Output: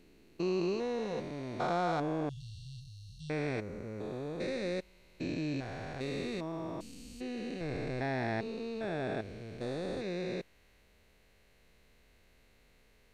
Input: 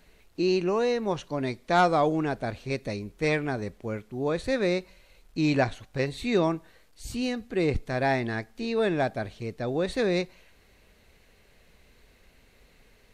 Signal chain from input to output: spectrogram pixelated in time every 400 ms; 2.29–3.30 s: brick-wall FIR band-stop 160–2700 Hz; trim -5 dB

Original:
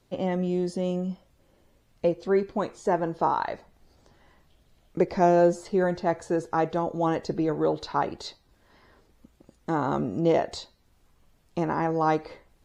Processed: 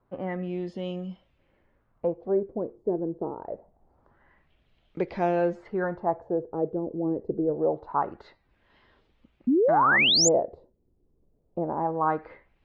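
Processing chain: LFO low-pass sine 0.25 Hz 380–3200 Hz; painted sound rise, 9.47–10.29 s, 230–7500 Hz -15 dBFS; trim -5.5 dB

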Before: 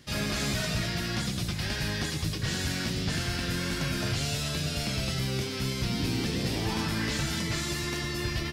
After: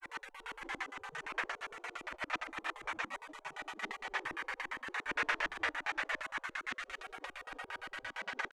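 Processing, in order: spectral gate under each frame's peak -30 dB weak; granulator, pitch spread up and down by 0 st; LFO low-pass square 8.7 Hz 310–1900 Hz; trim +17 dB

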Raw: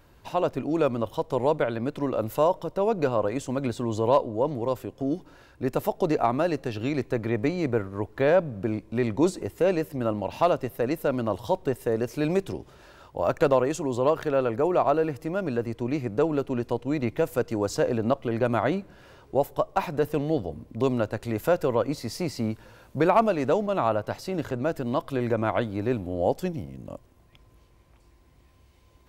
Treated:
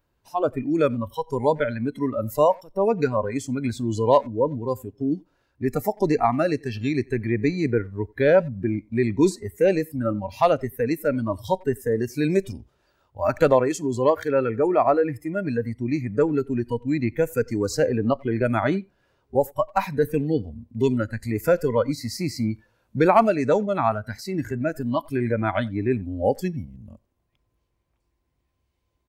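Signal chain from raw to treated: spectral noise reduction 20 dB; speakerphone echo 90 ms, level -26 dB; trim +4 dB

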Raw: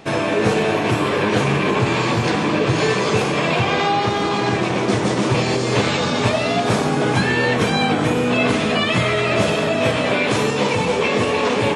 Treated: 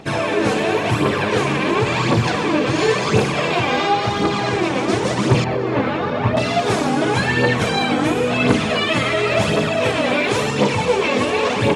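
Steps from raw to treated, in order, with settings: 5.44–6.37 s: low-pass 1.8 kHz 12 dB/octave; phaser 0.94 Hz, delay 4 ms, feedback 49%; trim -1 dB

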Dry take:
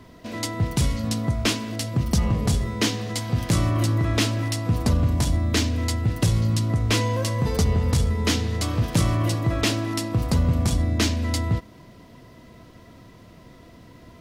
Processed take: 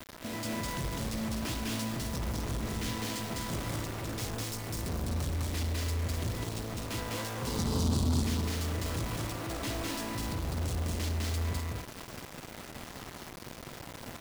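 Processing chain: 4.00–4.93 s: tone controls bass +10 dB, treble +13 dB; saturation -28.5 dBFS, distortion -4 dB; compression 6:1, threshold -36 dBFS, peak gain reduction 6.5 dB; bit crusher 7-bit; 7.47–8.21 s: ten-band graphic EQ 125 Hz +6 dB, 250 Hz +10 dB, 500 Hz -3 dB, 1 kHz +6 dB, 2 kHz -11 dB, 4 kHz +9 dB, 8 kHz +5 dB; loudspeakers at several distances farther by 70 m -1 dB, 87 m -6 dB

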